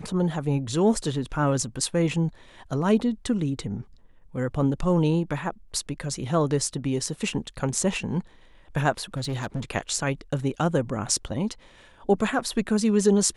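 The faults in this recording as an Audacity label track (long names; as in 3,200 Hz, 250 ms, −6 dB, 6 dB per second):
9.140000	9.600000	clipping −24.5 dBFS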